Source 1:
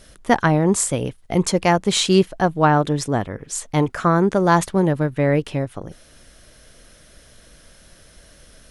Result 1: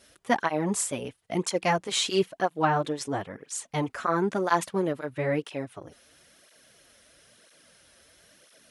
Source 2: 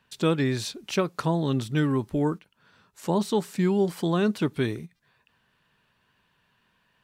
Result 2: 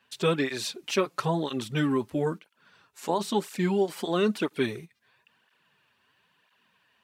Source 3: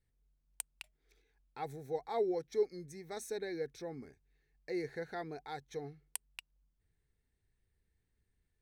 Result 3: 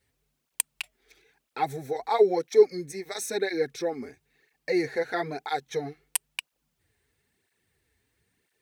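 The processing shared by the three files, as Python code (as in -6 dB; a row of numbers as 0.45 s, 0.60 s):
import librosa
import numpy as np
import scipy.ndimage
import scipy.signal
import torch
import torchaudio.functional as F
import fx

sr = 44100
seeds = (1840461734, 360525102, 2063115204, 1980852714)

y = fx.highpass(x, sr, hz=290.0, slope=6)
y = fx.peak_eq(y, sr, hz=2600.0, db=2.5, octaves=0.66)
y = fx.flanger_cancel(y, sr, hz=1.0, depth_ms=6.8)
y = y * 10.0 ** (-30 / 20.0) / np.sqrt(np.mean(np.square(y)))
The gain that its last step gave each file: -4.0 dB, +3.5 dB, +17.0 dB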